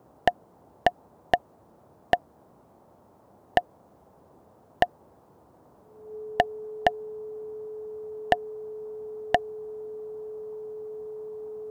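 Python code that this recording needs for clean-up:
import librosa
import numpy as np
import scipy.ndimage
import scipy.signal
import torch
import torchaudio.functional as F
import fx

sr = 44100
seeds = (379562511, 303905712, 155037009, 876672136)

y = fx.notch(x, sr, hz=430.0, q=30.0)
y = fx.noise_reduce(y, sr, print_start_s=2.77, print_end_s=3.27, reduce_db=30.0)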